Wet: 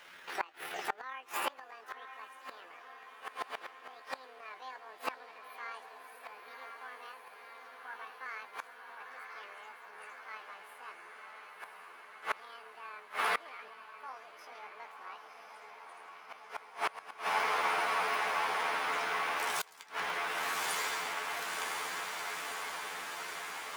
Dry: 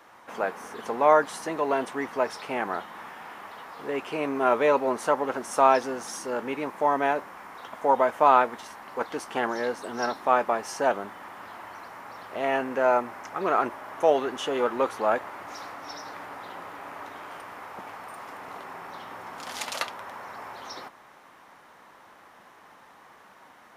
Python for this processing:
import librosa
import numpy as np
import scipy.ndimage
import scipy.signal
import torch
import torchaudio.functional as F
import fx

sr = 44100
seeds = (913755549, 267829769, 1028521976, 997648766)

y = fx.pitch_heads(x, sr, semitones=9.5)
y = fx.echo_diffused(y, sr, ms=1041, feedback_pct=73, wet_db=-3.0)
y = fx.gate_flip(y, sr, shuts_db=-19.0, range_db=-25)